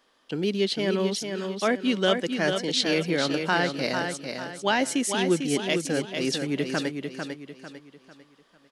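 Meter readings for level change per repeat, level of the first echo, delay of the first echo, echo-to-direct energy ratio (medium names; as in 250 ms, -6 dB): -8.5 dB, -6.0 dB, 448 ms, -5.5 dB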